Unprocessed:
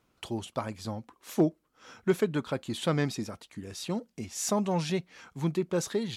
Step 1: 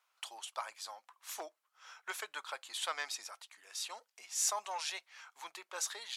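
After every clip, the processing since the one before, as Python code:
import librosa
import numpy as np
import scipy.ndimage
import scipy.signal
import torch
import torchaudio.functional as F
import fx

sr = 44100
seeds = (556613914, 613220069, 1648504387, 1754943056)

y = scipy.signal.sosfilt(scipy.signal.butter(4, 820.0, 'highpass', fs=sr, output='sos'), x)
y = fx.dynamic_eq(y, sr, hz=7900.0, q=0.71, threshold_db=-53.0, ratio=4.0, max_db=4)
y = y * 10.0 ** (-2.5 / 20.0)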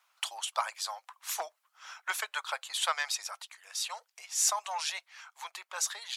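y = scipy.signal.sosfilt(scipy.signal.butter(4, 580.0, 'highpass', fs=sr, output='sos'), x)
y = fx.rider(y, sr, range_db=3, speed_s=2.0)
y = fx.hpss(y, sr, part='percussive', gain_db=7)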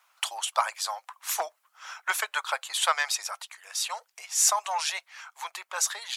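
y = fx.peak_eq(x, sr, hz=4000.0, db=-3.0, octaves=1.4)
y = y * 10.0 ** (6.5 / 20.0)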